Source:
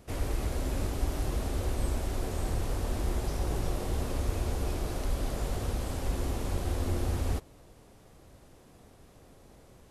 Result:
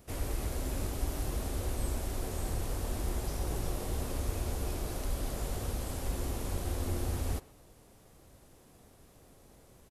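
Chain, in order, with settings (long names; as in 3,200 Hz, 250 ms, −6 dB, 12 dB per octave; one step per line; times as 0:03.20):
high-shelf EQ 8,200 Hz +9.5 dB
far-end echo of a speakerphone 120 ms, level −18 dB
level −3.5 dB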